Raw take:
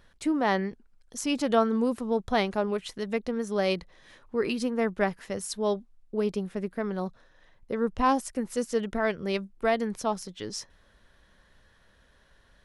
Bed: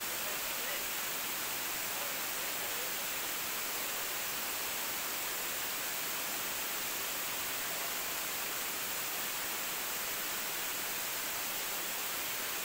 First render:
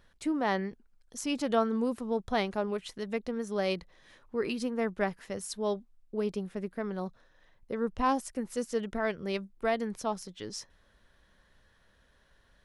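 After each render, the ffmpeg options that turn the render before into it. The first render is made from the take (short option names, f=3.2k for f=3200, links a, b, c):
-af "volume=-4dB"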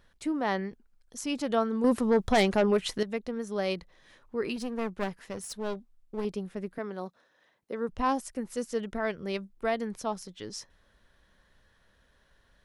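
-filter_complex "[0:a]asettb=1/sr,asplit=3[a][b][c];[a]atrim=end=1.844[d];[b]atrim=start=1.84:end=3.03,asetpts=PTS-STARTPTS,afade=t=in:d=0.004:c=qsin,afade=t=out:st=1.186:d=0.004:c=qsin,aeval=exprs='0.141*sin(PI/2*2*val(0)/0.141)':c=same[e];[c]atrim=start=3.026[f];[d][e]acrossfade=d=0.004:c1=hsin:c2=qsin[g];[g][f]acrossfade=d=0.004:c1=qsin:c2=hsin,asettb=1/sr,asplit=3[h][i][j];[h]atrim=end=4.564[k];[i]atrim=start=4.56:end=6.25,asetpts=PTS-STARTPTS,afade=t=in:d=0.004:c=qsin,afade=t=out:st=1.686:d=0.004:c=qsin,aeval=exprs='clip(val(0),-1,0.015)':c=same[l];[j]atrim=start=6.246[m];[k][l]acrossfade=d=0.004:c1=hsin:c2=qsin[n];[n][m]acrossfade=d=0.004:c1=qsin:c2=hsin,asettb=1/sr,asplit=3[o][p][q];[o]atrim=end=6.784[r];[p]atrim=start=6.78:end=7.89,asetpts=PTS-STARTPTS,afade=t=in:d=0.004:c=qsin,afade=t=out:st=1.106:d=0.004:c=qsin,highpass=230[s];[q]atrim=start=7.886[t];[r][s]acrossfade=d=0.004:c1=hsin:c2=qsin[u];[u][t]acrossfade=d=0.004:c1=qsin:c2=hsin"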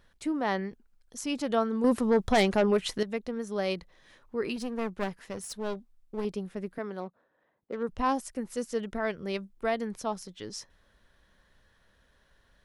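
-filter_complex "[0:a]asettb=1/sr,asplit=3[a][b][c];[a]atrim=end=7.004[d];[b]atrim=start=7:end=7.83,asetpts=PTS-STARTPTS,afade=t=in:d=0.004:c=qsin,afade=t=out:st=0.826:d=0.004:c=qsin,adynamicsmooth=sensitivity=7.5:basefreq=1.4k[e];[c]atrim=start=7.826[f];[d][e]acrossfade=d=0.004:c1=hsin:c2=qsin[g];[g][f]acrossfade=d=0.004:c1=qsin:c2=hsin"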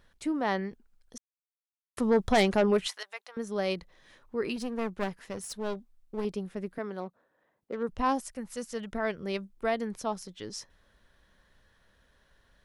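-filter_complex "[0:a]asettb=1/sr,asplit=3[a][b][c];[a]atrim=end=2.874[d];[b]atrim=start=2.87:end=3.37,asetpts=PTS-STARTPTS,afade=t=in:d=0.004:c=qsin,afade=t=out:st=0.496:d=0.004:c=qsin,highpass=f=790:w=0.5412,highpass=f=790:w=1.3066[e];[c]atrim=start=3.366[f];[d][e]acrossfade=d=0.004:c1=hsin:c2=qsin[g];[g][f]acrossfade=d=0.004:c1=qsin:c2=hsin,asettb=1/sr,asplit=3[h][i][j];[h]atrim=end=8.304[k];[i]atrim=start=8.3:end=8.93,asetpts=PTS-STARTPTS,afade=t=in:d=0.004:c=qsin,afade=t=out:st=0.626:d=0.004:c=qsin,equalizer=f=350:t=o:w=0.77:g=-11.5[l];[j]atrim=start=8.926[m];[k][l]acrossfade=d=0.004:c1=hsin:c2=qsin[n];[n][m]acrossfade=d=0.004:c1=qsin:c2=hsin,asplit=3[o][p][q];[o]atrim=end=1.18,asetpts=PTS-STARTPTS,afade=t=out:st=1.176:d=0.004:c=hsin[r];[p]atrim=start=1.18:end=1.97,asetpts=PTS-STARTPTS,volume=0[s];[q]atrim=start=1.97,asetpts=PTS-STARTPTS,afade=t=in:d=0.004:c=hsin[t];[r][s][t]concat=n=3:v=0:a=1"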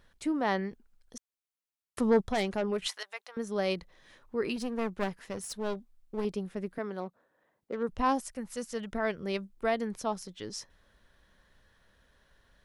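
-filter_complex "[0:a]asplit=3[a][b][c];[a]atrim=end=2.212[d];[b]atrim=start=2.208:end=2.822,asetpts=PTS-STARTPTS,volume=-7dB[e];[c]atrim=start=2.818[f];[d][e]acrossfade=d=0.004:c1=hsin:c2=hsin[g];[g][f]acrossfade=d=0.004:c1=hsin:c2=hsin"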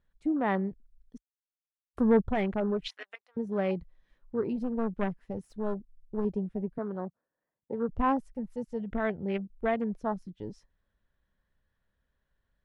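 -af "afwtdn=0.0112,bass=f=250:g=6,treble=f=4k:g=-9"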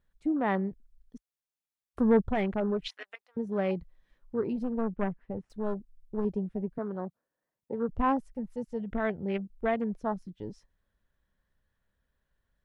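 -filter_complex "[0:a]asettb=1/sr,asplit=3[a][b][c];[a]atrim=end=4.814[d];[b]atrim=start=4.81:end=5.5,asetpts=PTS-STARTPTS,afade=t=in:d=0.004:c=qsin,afade=t=out:st=0.686:d=0.004:c=qsin,lowpass=2.2k[e];[c]atrim=start=5.496[f];[d][e]acrossfade=d=0.004:c1=hsin:c2=qsin[g];[g][f]acrossfade=d=0.004:c1=qsin:c2=hsin"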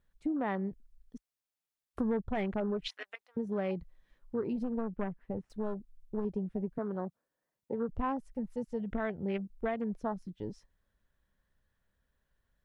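-af "acompressor=threshold=-30dB:ratio=4"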